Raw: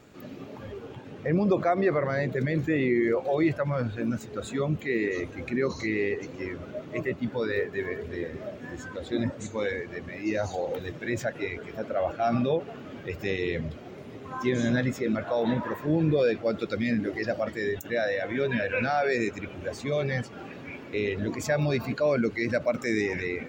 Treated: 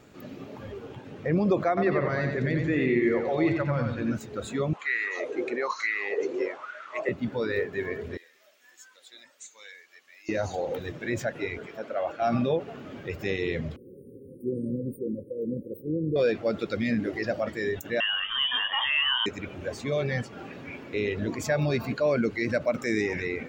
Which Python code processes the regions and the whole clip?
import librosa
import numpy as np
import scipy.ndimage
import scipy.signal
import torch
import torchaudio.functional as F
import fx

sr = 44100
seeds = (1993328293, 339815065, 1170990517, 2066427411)

y = fx.chain(x, sr, fx.lowpass(hz=6300.0, slope=12),
    fx.peak_eq(hz=550.0, db=-3.0, octaves=0.77),
    fx.echo_feedback(ms=91, feedback_pct=37, wet_db=-5), at=(1.68, 4.15))
y = fx.chain(y, sr, fx.filter_lfo_highpass(shape='sine', hz=1.1, low_hz=370.0, high_hz=1500.0, q=7.5),
    fx.brickwall_lowpass(high_hz=9600.0), at=(4.73, 7.09))
y = fx.chain(y, sr, fx.highpass(hz=750.0, slope=6),
    fx.differentiator(), at=(8.17, 10.29))
y = fx.chain(y, sr, fx.highpass(hz=460.0, slope=6),
    fx.high_shelf(hz=10000.0, db=-5.0), at=(11.66, 12.22))
y = fx.chain(y, sr, fx.brickwall_bandstop(low_hz=560.0, high_hz=8600.0),
    fx.low_shelf(hz=340.0, db=-7.5), at=(13.76, 16.16))
y = fx.chain(y, sr, fx.highpass(hz=130.0, slope=12),
    fx.freq_invert(carrier_hz=3400), at=(18.0, 19.26))